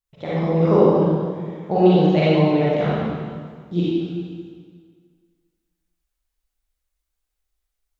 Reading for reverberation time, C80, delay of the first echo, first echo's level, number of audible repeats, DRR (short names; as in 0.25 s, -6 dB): 1.8 s, -2.0 dB, none, none, none, -9.5 dB